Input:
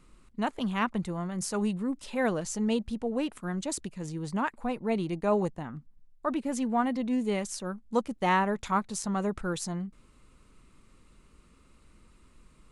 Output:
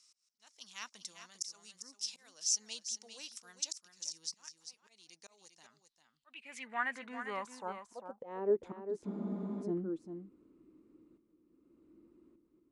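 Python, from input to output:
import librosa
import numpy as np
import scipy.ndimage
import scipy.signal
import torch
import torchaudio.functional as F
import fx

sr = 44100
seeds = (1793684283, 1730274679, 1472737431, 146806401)

p1 = fx.high_shelf(x, sr, hz=4600.0, db=10.0)
p2 = fx.auto_swell(p1, sr, attack_ms=459.0)
p3 = fx.filter_sweep_bandpass(p2, sr, from_hz=5500.0, to_hz=320.0, start_s=5.55, end_s=8.77, q=7.9)
p4 = p3 + fx.echo_single(p3, sr, ms=398, db=-9.0, dry=0)
p5 = fx.spec_freeze(p4, sr, seeds[0], at_s=9.09, hold_s=0.53)
y = F.gain(torch.from_numpy(p5), 11.5).numpy()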